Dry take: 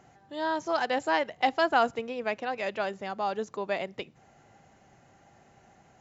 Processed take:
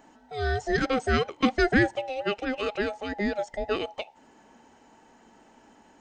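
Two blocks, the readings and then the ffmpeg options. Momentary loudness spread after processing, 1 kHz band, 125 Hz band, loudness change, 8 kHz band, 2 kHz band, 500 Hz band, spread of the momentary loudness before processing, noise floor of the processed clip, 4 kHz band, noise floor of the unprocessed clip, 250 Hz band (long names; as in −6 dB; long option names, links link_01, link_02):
10 LU, −3.5 dB, +17.0 dB, +2.0 dB, can't be measured, +3.5 dB, +2.0 dB, 10 LU, −58 dBFS, +2.5 dB, −60 dBFS, +8.5 dB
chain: -af "afftfilt=real='real(if(between(b,1,1008),(2*floor((b-1)/48)+1)*48-b,b),0)':imag='imag(if(between(b,1,1008),(2*floor((b-1)/48)+1)*48-b,b),0)*if(between(b,1,1008),-1,1)':win_size=2048:overlap=0.75,volume=2.5dB"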